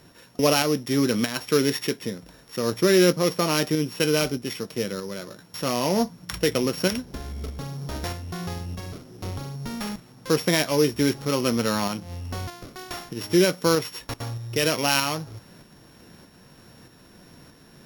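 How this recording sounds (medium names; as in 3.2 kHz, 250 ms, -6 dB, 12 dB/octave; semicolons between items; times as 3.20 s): a buzz of ramps at a fixed pitch in blocks of 8 samples; tremolo saw up 1.6 Hz, depth 40%; Vorbis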